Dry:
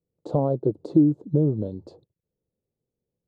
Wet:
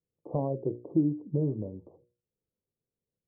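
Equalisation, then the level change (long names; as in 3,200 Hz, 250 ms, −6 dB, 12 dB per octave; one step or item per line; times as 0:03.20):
linear-phase brick-wall low-pass 1,200 Hz
mains-hum notches 60/120/180/240/300/360/420/480/540/600 Hz
−7.0 dB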